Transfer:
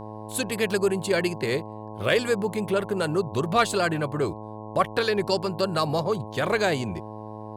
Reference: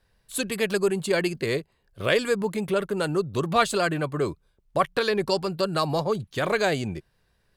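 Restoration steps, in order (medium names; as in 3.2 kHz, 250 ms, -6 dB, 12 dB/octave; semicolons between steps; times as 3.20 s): clip repair -9.5 dBFS; de-hum 107.6 Hz, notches 10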